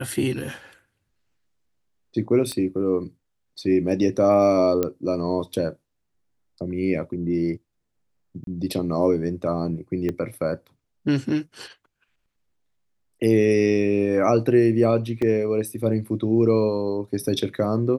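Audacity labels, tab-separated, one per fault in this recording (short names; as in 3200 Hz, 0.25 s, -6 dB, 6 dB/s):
2.520000	2.520000	pop -15 dBFS
4.830000	4.830000	pop -10 dBFS
8.440000	8.470000	gap 32 ms
10.090000	10.090000	pop -16 dBFS
15.220000	15.220000	gap 3.5 ms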